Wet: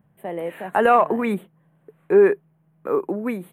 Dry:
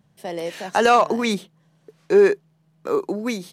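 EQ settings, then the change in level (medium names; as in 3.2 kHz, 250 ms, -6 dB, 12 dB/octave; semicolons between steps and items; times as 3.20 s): Butterworth band-stop 5.3 kHz, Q 0.57; 0.0 dB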